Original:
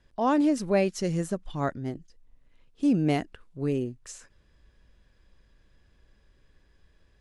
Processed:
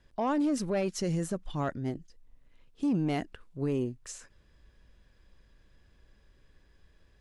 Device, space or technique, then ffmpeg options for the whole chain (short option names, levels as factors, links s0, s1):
soft clipper into limiter: -af "asoftclip=type=tanh:threshold=0.133,alimiter=limit=0.0708:level=0:latency=1:release=19"